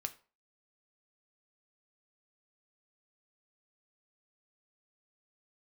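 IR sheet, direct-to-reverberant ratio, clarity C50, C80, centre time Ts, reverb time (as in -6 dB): 7.5 dB, 17.0 dB, 22.0 dB, 5 ms, 0.40 s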